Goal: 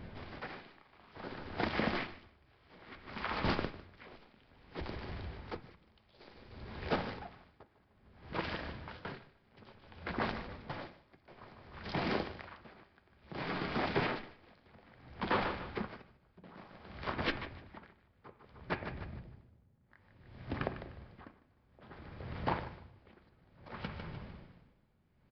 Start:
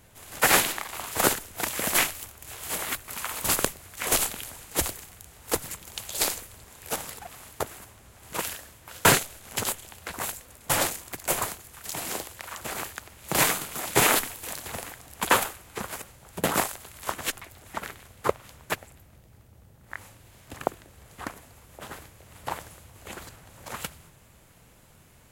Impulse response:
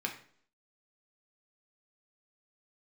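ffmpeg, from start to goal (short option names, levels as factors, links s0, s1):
-filter_complex "[0:a]lowshelf=f=380:g=10,asplit=2[s0][s1];[s1]acompressor=threshold=0.0126:ratio=6,volume=1.06[s2];[s0][s2]amix=inputs=2:normalize=0,alimiter=limit=0.299:level=0:latency=1:release=156,asoftclip=type=tanh:threshold=0.126,aecho=1:1:151|302|453|604|755:0.251|0.116|0.0532|0.0244|0.0112,asplit=2[s3][s4];[1:a]atrim=start_sample=2205,lowpass=2900[s5];[s4][s5]afir=irnorm=-1:irlink=0,volume=0.473[s6];[s3][s6]amix=inputs=2:normalize=0,aresample=11025,aresample=44100,aeval=exprs='val(0)*pow(10,-27*(0.5-0.5*cos(2*PI*0.58*n/s))/20)':c=same,volume=0.531"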